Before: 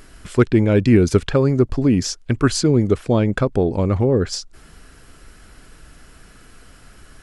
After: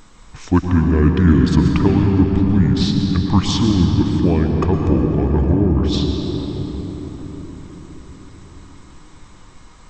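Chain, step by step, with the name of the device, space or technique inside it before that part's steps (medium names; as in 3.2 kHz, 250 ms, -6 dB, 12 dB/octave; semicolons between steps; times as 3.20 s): slowed and reverbed (tape speed -27%; reverberation RT60 5.0 s, pre-delay 102 ms, DRR 2 dB); trim -1 dB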